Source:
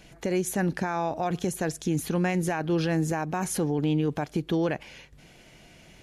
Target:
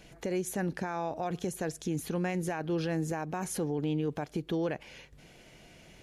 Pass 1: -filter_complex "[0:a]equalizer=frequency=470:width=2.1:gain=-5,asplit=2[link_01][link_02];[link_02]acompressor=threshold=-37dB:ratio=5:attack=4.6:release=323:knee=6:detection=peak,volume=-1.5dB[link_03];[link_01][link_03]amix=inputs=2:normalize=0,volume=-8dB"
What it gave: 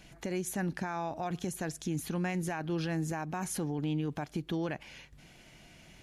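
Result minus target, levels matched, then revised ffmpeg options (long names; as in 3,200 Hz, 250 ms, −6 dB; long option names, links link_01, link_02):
500 Hz band −3.0 dB
-filter_complex "[0:a]equalizer=frequency=470:width=2.1:gain=3,asplit=2[link_01][link_02];[link_02]acompressor=threshold=-37dB:ratio=5:attack=4.6:release=323:knee=6:detection=peak,volume=-1.5dB[link_03];[link_01][link_03]amix=inputs=2:normalize=0,volume=-8dB"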